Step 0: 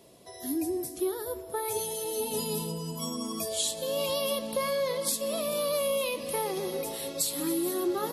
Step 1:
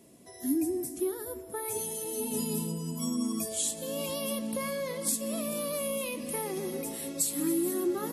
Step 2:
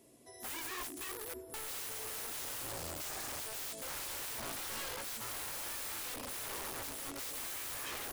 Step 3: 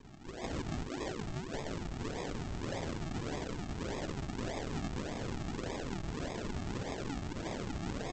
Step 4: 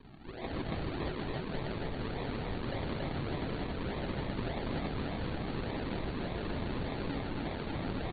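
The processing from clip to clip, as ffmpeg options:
-af "equalizer=f=250:t=o:w=1:g=10,equalizer=f=500:t=o:w=1:g=-4,equalizer=f=1000:t=o:w=1:g=-3,equalizer=f=2000:t=o:w=1:g=3,equalizer=f=4000:t=o:w=1:g=-7,equalizer=f=8000:t=o:w=1:g=6,volume=0.708"
-af "aeval=exprs='(mod(42.2*val(0)+1,2)-1)/42.2':c=same,equalizer=f=190:w=4:g=-14.5,volume=0.596"
-af "aresample=16000,acrusher=samples=22:mix=1:aa=0.000001:lfo=1:lforange=22:lforate=1.7,aresample=44100,acompressor=threshold=0.00398:ratio=3,volume=3.76"
-filter_complex "[0:a]asplit=2[s0][s1];[s1]aecho=0:1:154.5|279.9:0.398|0.794[s2];[s0][s2]amix=inputs=2:normalize=0" -ar 32000 -c:a ac3 -b:a 32k

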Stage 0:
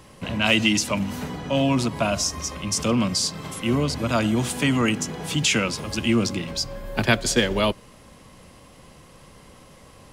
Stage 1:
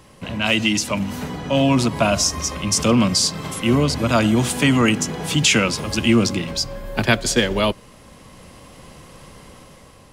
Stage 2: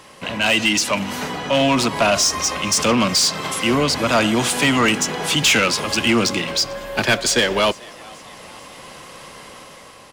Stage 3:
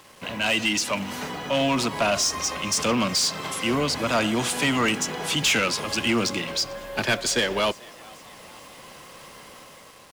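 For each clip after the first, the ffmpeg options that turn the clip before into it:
-af "dynaudnorm=f=320:g=5:m=2"
-filter_complex "[0:a]asplit=2[s0][s1];[s1]highpass=f=720:p=1,volume=8.91,asoftclip=type=tanh:threshold=0.841[s2];[s0][s2]amix=inputs=2:normalize=0,lowpass=f=7000:p=1,volume=0.501,asplit=5[s3][s4][s5][s6][s7];[s4]adelay=442,afreqshift=120,volume=0.0631[s8];[s5]adelay=884,afreqshift=240,volume=0.0347[s9];[s6]adelay=1326,afreqshift=360,volume=0.0191[s10];[s7]adelay=1768,afreqshift=480,volume=0.0105[s11];[s3][s8][s9][s10][s11]amix=inputs=5:normalize=0,volume=0.562"
-af "acrusher=bits=6:mix=0:aa=0.5,volume=0.501"

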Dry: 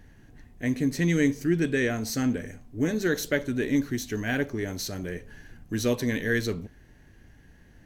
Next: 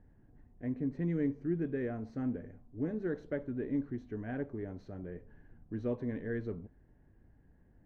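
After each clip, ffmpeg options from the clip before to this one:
-af "lowpass=1000,volume=0.355"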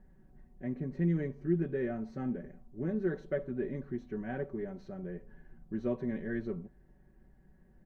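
-af "aecho=1:1:5.3:0.83"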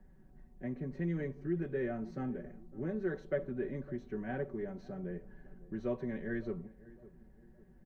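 -filter_complex "[0:a]acrossover=split=120|370|2000[s0][s1][s2][s3];[s1]alimiter=level_in=3.76:limit=0.0631:level=0:latency=1:release=331,volume=0.266[s4];[s0][s4][s2][s3]amix=inputs=4:normalize=0,asplit=2[s5][s6];[s6]adelay=556,lowpass=f=860:p=1,volume=0.126,asplit=2[s7][s8];[s8]adelay=556,lowpass=f=860:p=1,volume=0.42,asplit=2[s9][s10];[s10]adelay=556,lowpass=f=860:p=1,volume=0.42[s11];[s5][s7][s9][s11]amix=inputs=4:normalize=0"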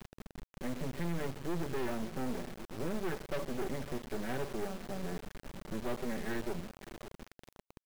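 -af "aresample=8000,asoftclip=type=tanh:threshold=0.0168,aresample=44100,acrusher=bits=6:dc=4:mix=0:aa=0.000001,volume=2.66"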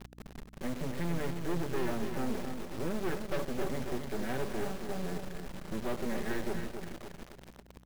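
-af "aeval=exprs='val(0)+0.00126*(sin(2*PI*60*n/s)+sin(2*PI*2*60*n/s)/2+sin(2*PI*3*60*n/s)/3+sin(2*PI*4*60*n/s)/4+sin(2*PI*5*60*n/s)/5)':c=same,aecho=1:1:272|544|816:0.447|0.112|0.0279,volume=1.19"

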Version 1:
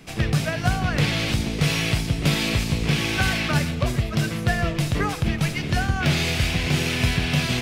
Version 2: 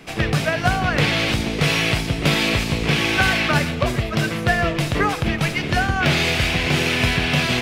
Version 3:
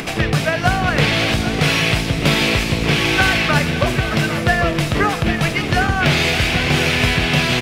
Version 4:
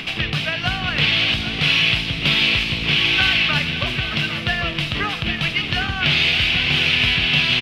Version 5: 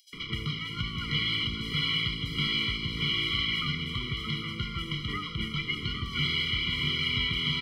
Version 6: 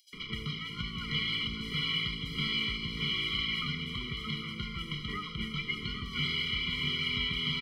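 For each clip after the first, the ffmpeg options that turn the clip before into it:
-af "bass=f=250:g=-7,treble=f=4000:g=-6,volume=2.11"
-filter_complex "[0:a]acompressor=mode=upward:threshold=0.1:ratio=2.5,asplit=2[s0][s1];[s1]aecho=0:1:558|799:0.178|0.282[s2];[s0][s2]amix=inputs=2:normalize=0,volume=1.33"
-af "firequalizer=gain_entry='entry(180,0);entry(470,-6);entry(1100,0);entry(1800,2);entry(2900,13);entry(6900,-7)':delay=0.05:min_phase=1,volume=0.447"
-filter_complex "[0:a]acrossover=split=5700[s0][s1];[s0]adelay=130[s2];[s2][s1]amix=inputs=2:normalize=0,acrossover=split=390|980[s3][s4][s5];[s4]aeval=exprs='0.0141*(abs(mod(val(0)/0.0141+3,4)-2)-1)':c=same[s6];[s3][s6][s5]amix=inputs=3:normalize=0,afftfilt=real='re*eq(mod(floor(b*sr/1024/480),2),0)':imag='im*eq(mod(floor(b*sr/1024/480),2),0)':win_size=1024:overlap=0.75,volume=0.398"
-af "aecho=1:1:4.7:0.38,volume=0.631"

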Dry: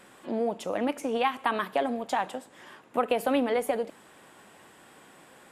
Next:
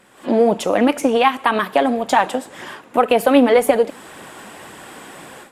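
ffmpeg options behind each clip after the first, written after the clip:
-af "dynaudnorm=f=150:g=3:m=5.96,aphaser=in_gain=1:out_gain=1:delay=4.4:decay=0.3:speed=1.9:type=triangular"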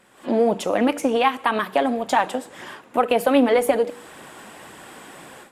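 -af "bandreject=f=96.36:t=h:w=4,bandreject=f=192.72:t=h:w=4,bandreject=f=289.08:t=h:w=4,bandreject=f=385.44:t=h:w=4,bandreject=f=481.8:t=h:w=4,volume=0.631"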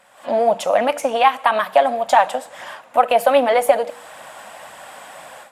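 -af "lowshelf=f=480:t=q:w=3:g=-8,volume=1.33"

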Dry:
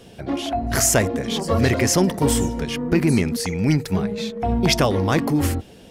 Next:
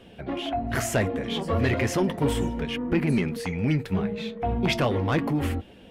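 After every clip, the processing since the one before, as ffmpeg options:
-af "highshelf=f=4000:t=q:w=1.5:g=-9,asoftclip=type=tanh:threshold=0.316,flanger=delay=3.1:depth=9.1:regen=-55:speed=0.35:shape=triangular"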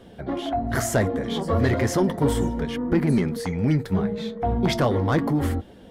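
-af "equalizer=f=2600:t=o:w=0.47:g=-12.5,volume=1.41"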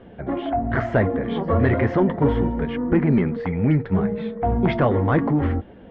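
-af "lowpass=f=2600:w=0.5412,lowpass=f=2600:w=1.3066,volume=1.33"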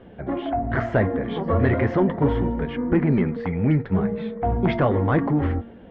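-af "bandreject=f=231.6:t=h:w=4,bandreject=f=463.2:t=h:w=4,bandreject=f=694.8:t=h:w=4,bandreject=f=926.4:t=h:w=4,bandreject=f=1158:t=h:w=4,bandreject=f=1389.6:t=h:w=4,bandreject=f=1621.2:t=h:w=4,bandreject=f=1852.8:t=h:w=4,bandreject=f=2084.4:t=h:w=4,bandreject=f=2316:t=h:w=4,volume=0.891"

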